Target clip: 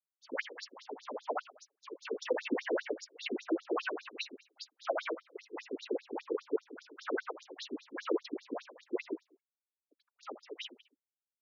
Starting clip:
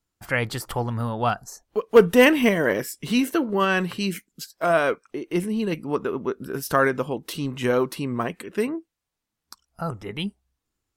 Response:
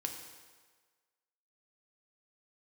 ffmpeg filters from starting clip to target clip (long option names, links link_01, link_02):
-filter_complex "[0:a]alimiter=limit=-15dB:level=0:latency=1:release=38,aeval=exprs='0.178*(cos(1*acos(clip(val(0)/0.178,-1,1)))-cos(1*PI/2))+0.0178*(cos(3*acos(clip(val(0)/0.178,-1,1)))-cos(3*PI/2))':channel_layout=same,acrusher=bits=7:mix=0:aa=0.5,afftfilt=real='hypot(re,im)*cos(2*PI*random(0))':imag='hypot(re,im)*sin(2*PI*random(1))':win_size=512:overlap=0.75,acrusher=bits=5:mode=log:mix=0:aa=0.000001,asplit=2[link_01][link_02];[link_02]aecho=0:1:76|152|228:0.211|0.074|0.0259[link_03];[link_01][link_03]amix=inputs=2:normalize=0,asetrate=42336,aresample=44100,afftfilt=real='re*between(b*sr/1024,350*pow(5100/350,0.5+0.5*sin(2*PI*5*pts/sr))/1.41,350*pow(5100/350,0.5+0.5*sin(2*PI*5*pts/sr))*1.41)':imag='im*between(b*sr/1024,350*pow(5100/350,0.5+0.5*sin(2*PI*5*pts/sr))/1.41,350*pow(5100/350,0.5+0.5*sin(2*PI*5*pts/sr))*1.41)':win_size=1024:overlap=0.75,volume=3.5dB"